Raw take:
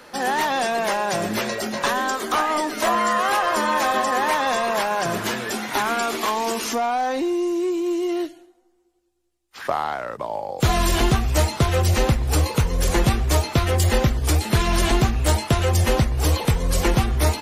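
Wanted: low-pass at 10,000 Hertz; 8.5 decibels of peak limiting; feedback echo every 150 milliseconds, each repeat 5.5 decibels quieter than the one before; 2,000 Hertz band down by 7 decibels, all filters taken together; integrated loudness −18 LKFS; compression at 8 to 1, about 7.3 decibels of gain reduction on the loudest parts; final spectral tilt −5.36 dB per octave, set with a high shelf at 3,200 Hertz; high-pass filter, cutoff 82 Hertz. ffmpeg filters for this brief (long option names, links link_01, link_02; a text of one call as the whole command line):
ffmpeg -i in.wav -af "highpass=82,lowpass=10000,equalizer=frequency=2000:width_type=o:gain=-7.5,highshelf=frequency=3200:gain=-5.5,acompressor=threshold=-22dB:ratio=8,alimiter=limit=-19.5dB:level=0:latency=1,aecho=1:1:150|300|450|600|750|900|1050:0.531|0.281|0.149|0.079|0.0419|0.0222|0.0118,volume=9.5dB" out.wav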